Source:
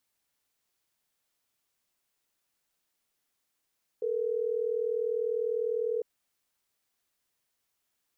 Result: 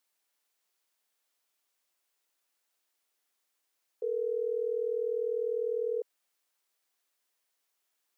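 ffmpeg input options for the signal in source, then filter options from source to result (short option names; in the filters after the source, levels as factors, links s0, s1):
-f lavfi -i "aevalsrc='0.0316*(sin(2*PI*440*t)+sin(2*PI*480*t))*clip(min(mod(t,6),2-mod(t,6))/0.005,0,1)':d=3.12:s=44100"
-af "highpass=360"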